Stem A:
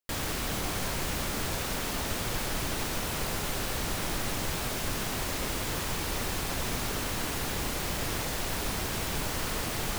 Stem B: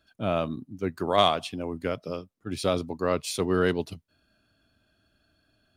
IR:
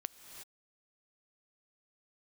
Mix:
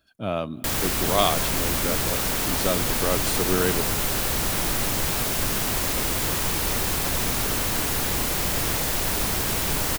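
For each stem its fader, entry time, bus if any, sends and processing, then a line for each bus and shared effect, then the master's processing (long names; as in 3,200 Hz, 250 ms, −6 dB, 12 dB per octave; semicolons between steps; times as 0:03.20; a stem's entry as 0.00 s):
+2.5 dB, 0.55 s, send −5 dB, no processing
−2.0 dB, 0.00 s, send −11.5 dB, no processing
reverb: on, pre-delay 3 ms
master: high-shelf EQ 9,000 Hz +8 dB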